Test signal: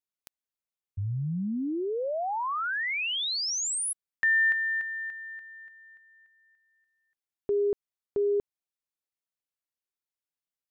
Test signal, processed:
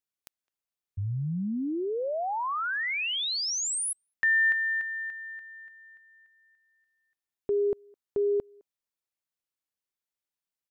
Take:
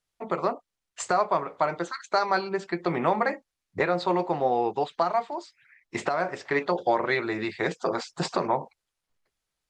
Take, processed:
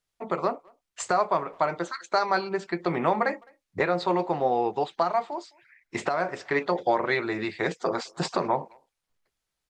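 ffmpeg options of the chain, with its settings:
ffmpeg -i in.wav -filter_complex "[0:a]asplit=2[link_01][link_02];[link_02]adelay=210,highpass=300,lowpass=3400,asoftclip=type=hard:threshold=-18dB,volume=-28dB[link_03];[link_01][link_03]amix=inputs=2:normalize=0" out.wav

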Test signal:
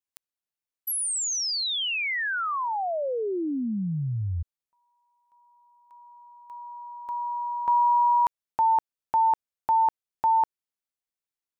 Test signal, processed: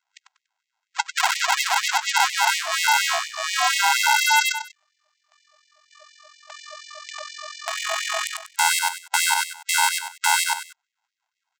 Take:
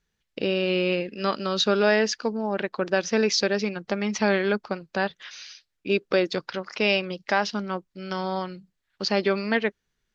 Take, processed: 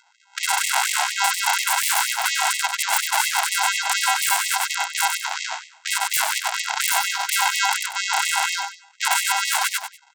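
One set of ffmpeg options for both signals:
ffmpeg -i in.wav -filter_complex "[0:a]afftfilt=real='real(if(lt(b,920),b+92*(1-2*mod(floor(b/92),2)),b),0)':imag='imag(if(lt(b,920),b+92*(1-2*mod(floor(b/92),2)),b),0)':win_size=2048:overlap=0.75,afftfilt=real='re*(1-between(b*sr/4096,200,860))':imag='im*(1-between(b*sr/4096,200,860))':win_size=4096:overlap=0.75,highpass=frequency=120:width=0.5412,highpass=frequency=120:width=1.3066,aresample=16000,acrusher=samples=27:mix=1:aa=0.000001,aresample=44100,aeval=exprs='0.0531*(abs(mod(val(0)/0.0531+3,4)-2)-1)':channel_layout=same,asplit=2[link_01][link_02];[link_02]aecho=0:1:96|192|288:0.335|0.1|0.0301[link_03];[link_01][link_03]amix=inputs=2:normalize=0,alimiter=level_in=31.5dB:limit=-1dB:release=50:level=0:latency=1,afftfilt=real='re*gte(b*sr/1024,600*pow(1900/600,0.5+0.5*sin(2*PI*4.2*pts/sr)))':imag='im*gte(b*sr/1024,600*pow(1900/600,0.5+0.5*sin(2*PI*4.2*pts/sr)))':win_size=1024:overlap=0.75,volume=-3.5dB" out.wav

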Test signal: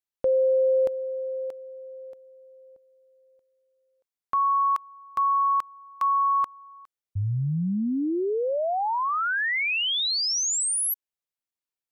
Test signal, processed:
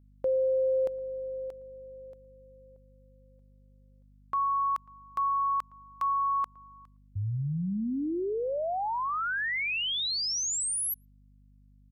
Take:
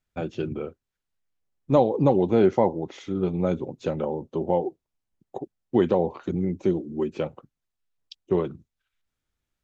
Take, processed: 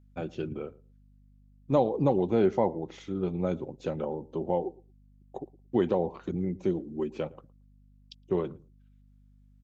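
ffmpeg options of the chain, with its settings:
ffmpeg -i in.wav -filter_complex "[0:a]aeval=exprs='val(0)+0.00251*(sin(2*PI*50*n/s)+sin(2*PI*2*50*n/s)/2+sin(2*PI*3*50*n/s)/3+sin(2*PI*4*50*n/s)/4+sin(2*PI*5*50*n/s)/5)':channel_layout=same,asplit=2[link_01][link_02];[link_02]adelay=113,lowpass=frequency=850:poles=1,volume=-20.5dB,asplit=2[link_03][link_04];[link_04]adelay=113,lowpass=frequency=850:poles=1,volume=0.16[link_05];[link_01][link_03][link_05]amix=inputs=3:normalize=0,volume=-5dB" out.wav

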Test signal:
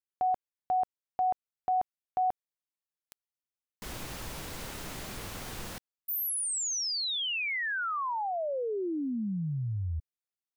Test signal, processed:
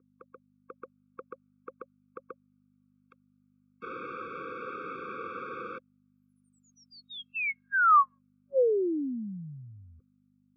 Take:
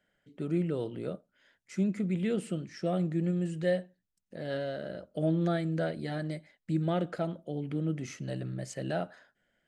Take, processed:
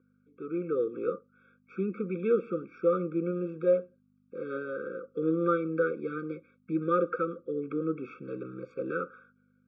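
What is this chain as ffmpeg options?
ffmpeg -i in.wav -af "dynaudnorm=framelen=140:gausssize=9:maxgain=9dB,aeval=exprs='val(0)+0.00562*(sin(2*PI*50*n/s)+sin(2*PI*2*50*n/s)/2+sin(2*PI*3*50*n/s)/3+sin(2*PI*4*50*n/s)/4+sin(2*PI*5*50*n/s)/5)':channel_layout=same,asuperstop=centerf=710:order=20:qfactor=2,highpass=440,equalizer=frequency=530:width_type=q:width=4:gain=5,equalizer=frequency=790:width_type=q:width=4:gain=-8,equalizer=frequency=1200:width_type=q:width=4:gain=7,equalizer=frequency=1800:width_type=q:width=4:gain=-7,lowpass=frequency=2100:width=0.5412,lowpass=frequency=2100:width=1.3066,afftfilt=real='re*eq(mod(floor(b*sr/1024/540),2),0)':imag='im*eq(mod(floor(b*sr/1024/540),2),0)':win_size=1024:overlap=0.75" out.wav

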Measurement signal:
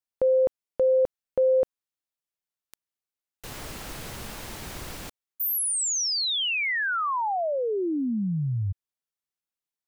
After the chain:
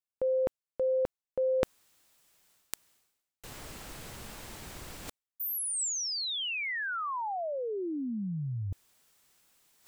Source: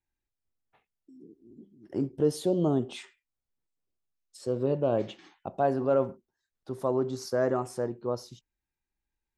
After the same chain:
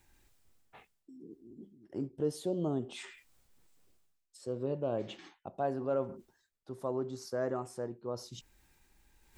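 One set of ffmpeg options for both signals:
ffmpeg -i in.wav -af "equalizer=frequency=7800:width_type=o:width=0.26:gain=3,areverse,acompressor=mode=upward:threshold=-38dB:ratio=2.5:attack=94:release=302:knee=2.83:detection=peak,areverse,volume=-7.5dB" out.wav

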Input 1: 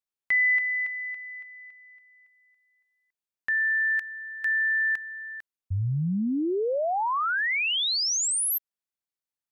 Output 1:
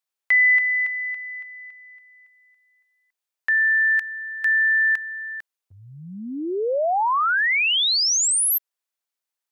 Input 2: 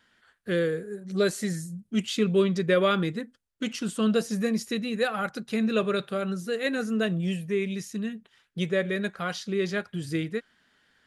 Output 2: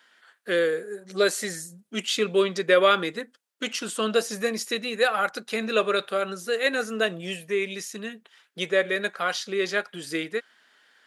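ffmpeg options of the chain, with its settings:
ffmpeg -i in.wav -af "highpass=460,volume=6dB" out.wav

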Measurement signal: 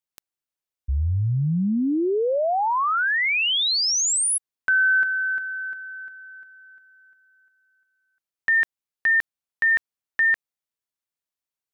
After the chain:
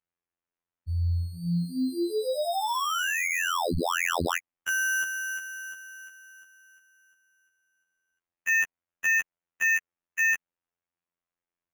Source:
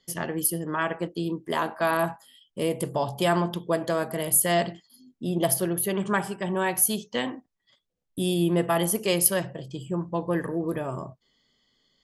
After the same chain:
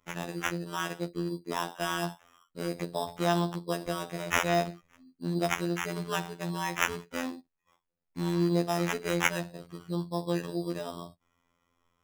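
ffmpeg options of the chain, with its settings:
ffmpeg -i in.wav -af "acrusher=samples=10:mix=1:aa=0.000001,highshelf=frequency=10000:gain=-5.5,afftfilt=real='hypot(re,im)*cos(PI*b)':imag='0':win_size=2048:overlap=0.75,volume=-2.5dB" out.wav

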